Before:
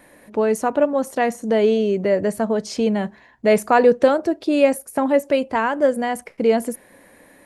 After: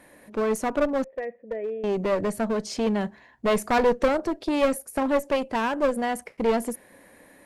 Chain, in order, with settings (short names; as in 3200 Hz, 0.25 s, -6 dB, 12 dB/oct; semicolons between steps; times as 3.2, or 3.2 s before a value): 1.04–1.84 vocal tract filter e; one-sided clip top -22.5 dBFS; gain -3 dB